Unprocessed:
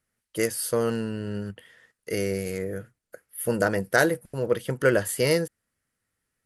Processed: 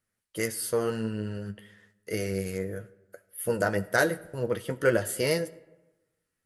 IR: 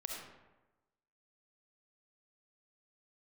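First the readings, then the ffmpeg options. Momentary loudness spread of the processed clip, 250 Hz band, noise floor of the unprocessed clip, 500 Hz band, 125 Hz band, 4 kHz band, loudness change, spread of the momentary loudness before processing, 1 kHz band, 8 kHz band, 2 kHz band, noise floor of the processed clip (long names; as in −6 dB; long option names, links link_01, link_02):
13 LU, −3.5 dB, −83 dBFS, −3.0 dB, −2.5 dB, −3.0 dB, −3.0 dB, 13 LU, −2.5 dB, −3.0 dB, −3.0 dB, −83 dBFS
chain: -filter_complex "[0:a]flanger=delay=8.4:depth=3.3:regen=43:speed=1.8:shape=triangular,asplit=2[link_01][link_02];[1:a]atrim=start_sample=2205[link_03];[link_02][link_03]afir=irnorm=-1:irlink=0,volume=-15dB[link_04];[link_01][link_04]amix=inputs=2:normalize=0"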